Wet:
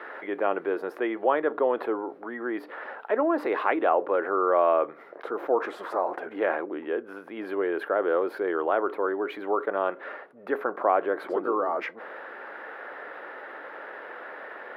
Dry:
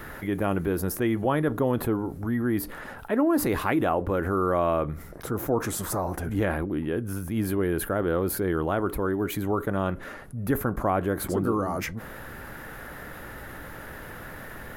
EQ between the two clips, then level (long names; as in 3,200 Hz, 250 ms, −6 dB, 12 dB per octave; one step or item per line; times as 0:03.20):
high-pass filter 410 Hz 24 dB per octave
high-frequency loss of the air 400 metres
high-shelf EQ 6,700 Hz −7.5 dB
+5.0 dB